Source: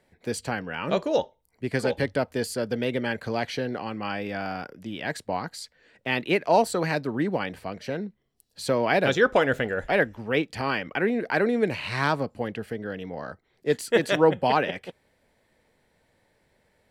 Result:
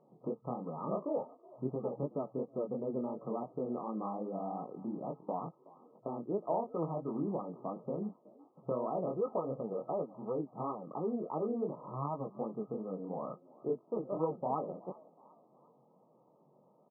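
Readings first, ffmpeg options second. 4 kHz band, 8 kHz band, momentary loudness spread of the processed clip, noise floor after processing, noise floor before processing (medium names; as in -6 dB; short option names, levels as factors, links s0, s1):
under -40 dB, under -40 dB, 7 LU, -67 dBFS, -69 dBFS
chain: -filter_complex "[0:a]acompressor=threshold=0.0112:ratio=3,asplit=4[s0][s1][s2][s3];[s1]adelay=371,afreqshift=75,volume=0.0794[s4];[s2]adelay=742,afreqshift=150,volume=0.0351[s5];[s3]adelay=1113,afreqshift=225,volume=0.0153[s6];[s0][s4][s5][s6]amix=inputs=4:normalize=0,flanger=delay=17.5:depth=7.6:speed=2.8,afftfilt=real='re*between(b*sr/4096,120,1300)':imag='im*between(b*sr/4096,120,1300)':win_size=4096:overlap=0.75,volume=1.88"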